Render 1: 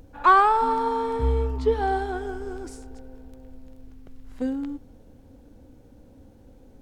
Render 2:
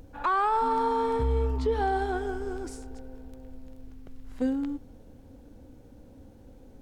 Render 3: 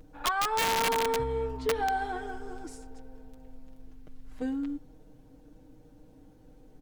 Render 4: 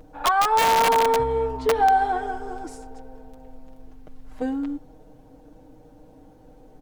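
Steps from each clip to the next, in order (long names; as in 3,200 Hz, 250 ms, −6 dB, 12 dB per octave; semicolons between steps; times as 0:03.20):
brickwall limiter −18 dBFS, peak gain reduction 11.5 dB
comb filter 6.5 ms, depth 76%; dynamic equaliser 2,100 Hz, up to +5 dB, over −44 dBFS, Q 1.5; wrap-around overflow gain 15 dB; level −5.5 dB
parametric band 740 Hz +8.5 dB 1.4 octaves; level +3.5 dB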